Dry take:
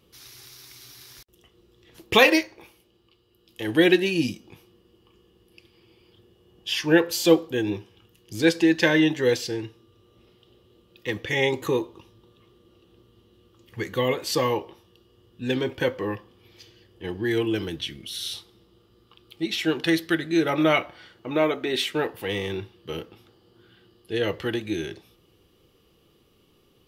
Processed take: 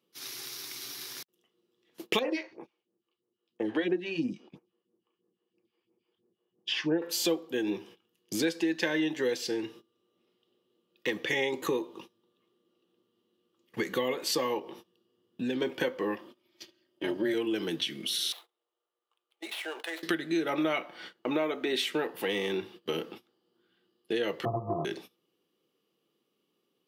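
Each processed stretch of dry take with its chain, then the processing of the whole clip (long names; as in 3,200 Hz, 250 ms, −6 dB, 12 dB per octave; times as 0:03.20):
0:02.19–0:07.02: all-pass phaser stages 2, 3 Hz, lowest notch 110–3,900 Hz + head-to-tape spacing loss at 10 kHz 25 dB
0:14.59–0:15.62: low-shelf EQ 320 Hz +6 dB + downward compressor 2 to 1, threshold −37 dBFS
0:16.15–0:17.34: comb filter 3.2 ms, depth 97% + amplitude modulation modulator 220 Hz, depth 45%
0:18.32–0:20.03: running median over 9 samples + four-pole ladder high-pass 500 Hz, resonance 30% + downward compressor 3 to 1, threshold −41 dBFS
0:24.45–0:24.85: samples sorted by size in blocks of 64 samples + linear-phase brick-wall low-pass 1,300 Hz + low shelf with overshoot 170 Hz +12 dB, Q 3
whole clip: noise gate −48 dBFS, range −21 dB; high-pass filter 180 Hz 24 dB per octave; downward compressor 4 to 1, threshold −35 dBFS; level +6 dB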